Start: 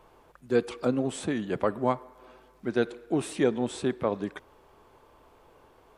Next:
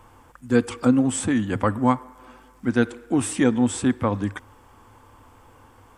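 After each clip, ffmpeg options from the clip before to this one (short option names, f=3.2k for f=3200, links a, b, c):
-af "equalizer=f=100:t=o:w=0.33:g=12,equalizer=f=160:t=o:w=0.33:g=-7,equalizer=f=250:t=o:w=0.33:g=5,equalizer=f=400:t=o:w=0.33:g=-12,equalizer=f=630:t=o:w=0.33:g=-10,equalizer=f=2.5k:t=o:w=0.33:g=-3,equalizer=f=4k:t=o:w=0.33:g=-8,equalizer=f=8k:t=o:w=0.33:g=6,volume=8dB"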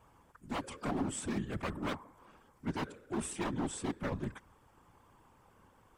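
-af "aeval=exprs='0.141*(abs(mod(val(0)/0.141+3,4)-2)-1)':c=same,afftfilt=real='hypot(re,im)*cos(2*PI*random(0))':imag='hypot(re,im)*sin(2*PI*random(1))':win_size=512:overlap=0.75,volume=-6.5dB"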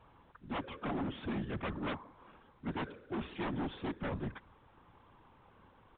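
-af "aresample=11025,asoftclip=type=hard:threshold=-33.5dB,aresample=44100,volume=1dB" -ar 8000 -c:a pcm_mulaw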